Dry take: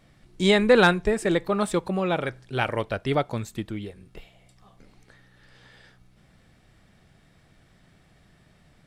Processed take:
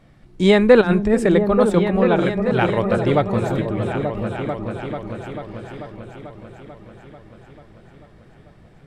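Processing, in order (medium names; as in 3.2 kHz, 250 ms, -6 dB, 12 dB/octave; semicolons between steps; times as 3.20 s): treble shelf 2.4 kHz -10 dB; 0.81–1.27 s: compressor with a negative ratio -23 dBFS, ratio -0.5; delay with an opening low-pass 441 ms, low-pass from 200 Hz, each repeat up 2 oct, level -3 dB; trim +6.5 dB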